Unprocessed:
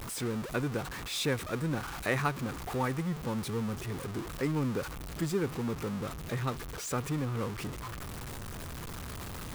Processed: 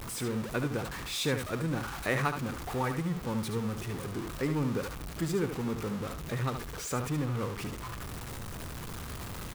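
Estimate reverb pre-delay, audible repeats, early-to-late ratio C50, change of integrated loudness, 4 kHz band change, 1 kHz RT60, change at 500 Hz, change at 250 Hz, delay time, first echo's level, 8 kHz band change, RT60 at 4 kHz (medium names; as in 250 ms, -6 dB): no reverb, 1, no reverb, +0.5 dB, +0.5 dB, no reverb, +0.5 dB, +0.5 dB, 73 ms, -8.0 dB, +0.5 dB, no reverb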